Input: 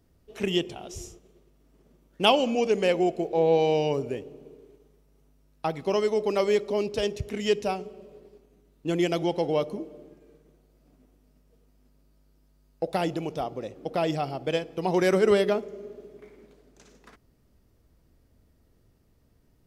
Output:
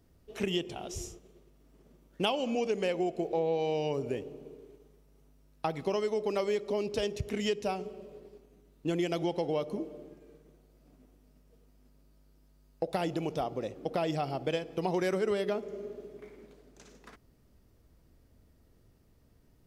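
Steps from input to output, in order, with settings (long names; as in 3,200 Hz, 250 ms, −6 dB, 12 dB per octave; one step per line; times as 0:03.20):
downward compressor 4 to 1, threshold −28 dBFS, peak gain reduction 12 dB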